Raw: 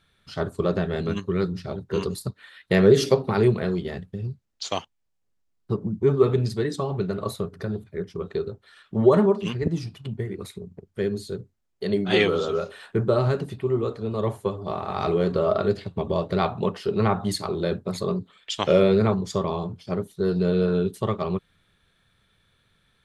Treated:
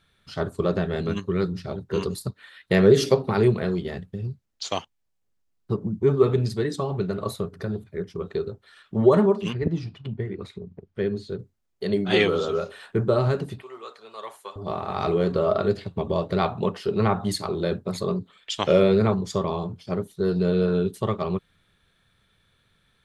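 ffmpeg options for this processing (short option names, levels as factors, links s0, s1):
-filter_complex "[0:a]asettb=1/sr,asplit=3[s0][s1][s2];[s0]atrim=end=9.534[s3];[s1]atrim=start=9.53:end=11.39,asetpts=PTS-STARTPTS,afade=t=in:d=0.004:c=qsin,afade=t=out:st=1.856:d=0.004:c=qsin,lowpass=4000[s4];[s2]atrim=start=11.386[s5];[s3][s4]acrossfade=d=0.004:c1=hsin:c2=qsin[s6];[s6][s5]acrossfade=d=0.004:c1=qsin:c2=hsin,asettb=1/sr,asplit=3[s7][s8][s9];[s7]atrim=end=13.624[s10];[s8]atrim=start=13.62:end=14.56,asetpts=PTS-STARTPTS,afade=t=in:d=0.004:c=qsin,afade=t=out:st=0.936:d=0.004:c=qsin,highpass=1100[s11];[s9]atrim=start=14.556[s12];[s10][s11]acrossfade=d=0.004:c1=hsin:c2=qsin[s13];[s13][s12]acrossfade=d=0.004:c1=qsin:c2=hsin"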